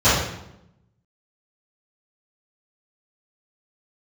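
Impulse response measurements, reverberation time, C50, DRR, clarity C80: 0.85 s, 0.0 dB, −19.0 dB, 4.0 dB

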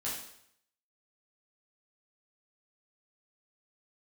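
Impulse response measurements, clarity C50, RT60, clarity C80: 3.0 dB, 0.70 s, 6.5 dB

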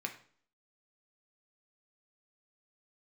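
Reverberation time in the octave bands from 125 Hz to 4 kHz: 0.50, 0.60, 0.50, 0.50, 0.45, 0.45 seconds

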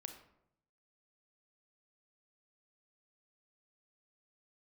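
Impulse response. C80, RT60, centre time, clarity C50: 11.0 dB, 0.75 s, 17 ms, 8.0 dB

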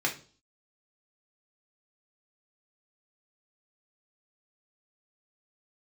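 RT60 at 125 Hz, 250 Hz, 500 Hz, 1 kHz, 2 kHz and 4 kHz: 0.50, 0.55, 0.45, 0.35, 0.35, 0.45 seconds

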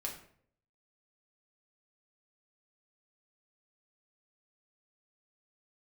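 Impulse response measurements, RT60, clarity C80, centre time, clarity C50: 0.60 s, 11.0 dB, 23 ms, 7.5 dB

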